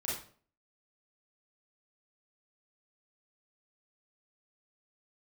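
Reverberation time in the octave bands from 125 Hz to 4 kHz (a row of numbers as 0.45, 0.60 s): 0.50, 0.55, 0.50, 0.45, 0.40, 0.35 s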